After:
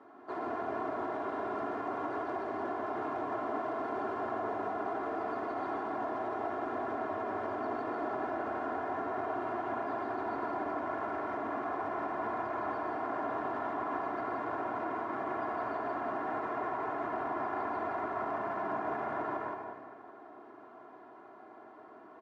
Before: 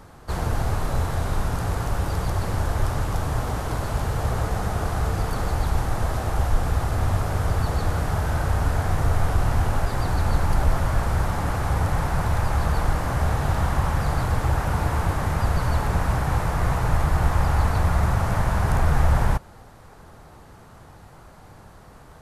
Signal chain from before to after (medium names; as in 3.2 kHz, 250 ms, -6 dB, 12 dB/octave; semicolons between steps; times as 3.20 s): high-pass 230 Hz 24 dB/octave; comb 2.9 ms, depth 87%; delay 169 ms -5.5 dB; peak limiter -20.5 dBFS, peak gain reduction 8.5 dB; low-pass 1.4 kHz 12 dB/octave; reverberation RT60 1.9 s, pre-delay 73 ms, DRR 4 dB; trim -6.5 dB